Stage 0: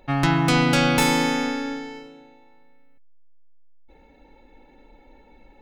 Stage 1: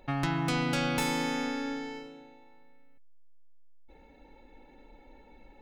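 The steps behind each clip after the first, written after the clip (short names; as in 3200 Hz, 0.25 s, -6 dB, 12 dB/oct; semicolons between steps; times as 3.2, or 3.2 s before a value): compressor 2:1, threshold -29 dBFS, peak gain reduction 8 dB; gain -3 dB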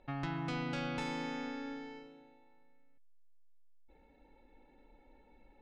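air absorption 110 m; gain -8 dB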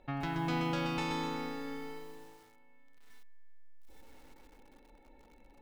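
spring tank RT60 3.8 s, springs 32/53 ms, chirp 70 ms, DRR 16 dB; lo-fi delay 0.127 s, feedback 55%, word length 10-bit, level -4.5 dB; gain +2.5 dB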